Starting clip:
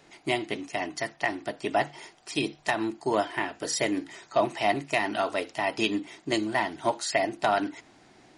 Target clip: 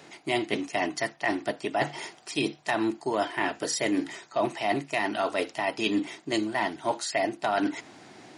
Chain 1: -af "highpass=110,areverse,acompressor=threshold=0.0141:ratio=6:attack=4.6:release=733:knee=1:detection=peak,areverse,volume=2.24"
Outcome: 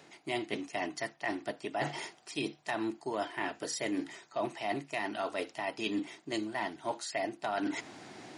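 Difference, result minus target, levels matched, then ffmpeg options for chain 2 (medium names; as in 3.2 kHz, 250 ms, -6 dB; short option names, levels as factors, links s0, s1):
compression: peak gain reduction +7.5 dB
-af "highpass=110,areverse,acompressor=threshold=0.0398:ratio=6:attack=4.6:release=733:knee=1:detection=peak,areverse,volume=2.24"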